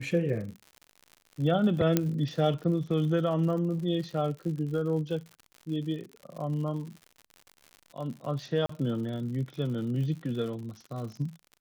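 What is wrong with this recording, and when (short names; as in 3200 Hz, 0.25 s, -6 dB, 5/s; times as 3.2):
crackle 92/s -38 dBFS
1.97 pop -9 dBFS
8.66–8.69 gap 34 ms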